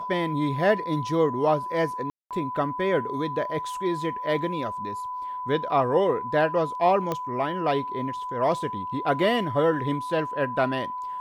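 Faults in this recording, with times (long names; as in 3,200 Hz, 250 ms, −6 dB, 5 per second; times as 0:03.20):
whistle 1,000 Hz −30 dBFS
0:02.10–0:02.31: drop-out 207 ms
0:07.12: click −14 dBFS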